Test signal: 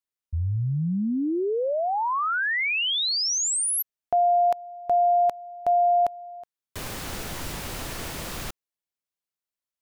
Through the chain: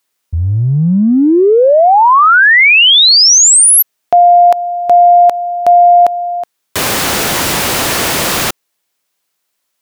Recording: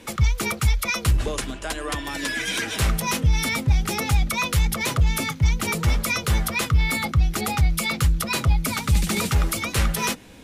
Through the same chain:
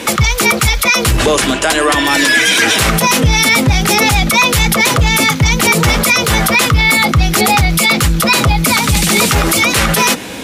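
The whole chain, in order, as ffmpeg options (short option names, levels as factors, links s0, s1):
-filter_complex "[0:a]highpass=f=280:p=1,asplit=2[s0][s1];[s1]acompressor=threshold=0.02:ratio=6:attack=0.85:release=20:knee=1:detection=peak,volume=1.26[s2];[s0][s2]amix=inputs=2:normalize=0,alimiter=level_in=7.08:limit=0.891:release=50:level=0:latency=1,volume=0.891"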